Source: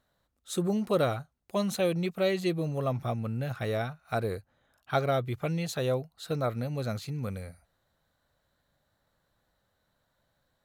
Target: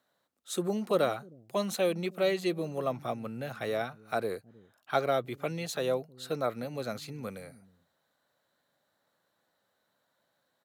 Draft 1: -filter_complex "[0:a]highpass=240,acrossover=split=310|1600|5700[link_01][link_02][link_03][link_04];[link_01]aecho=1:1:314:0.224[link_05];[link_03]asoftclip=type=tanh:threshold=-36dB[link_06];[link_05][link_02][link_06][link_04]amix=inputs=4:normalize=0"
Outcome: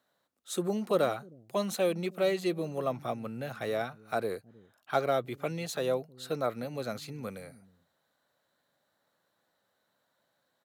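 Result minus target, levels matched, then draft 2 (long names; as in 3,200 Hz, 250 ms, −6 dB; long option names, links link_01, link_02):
soft clipping: distortion +14 dB
-filter_complex "[0:a]highpass=240,acrossover=split=310|1600|5700[link_01][link_02][link_03][link_04];[link_01]aecho=1:1:314:0.224[link_05];[link_03]asoftclip=type=tanh:threshold=-25.5dB[link_06];[link_05][link_02][link_06][link_04]amix=inputs=4:normalize=0"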